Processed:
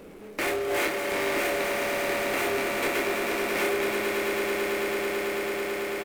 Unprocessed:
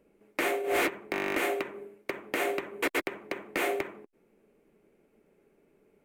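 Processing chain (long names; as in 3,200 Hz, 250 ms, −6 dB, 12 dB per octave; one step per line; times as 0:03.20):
echo that builds up and dies away 110 ms, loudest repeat 8, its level −9.5 dB
power curve on the samples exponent 0.5
double-tracking delay 28 ms −5 dB
level −6 dB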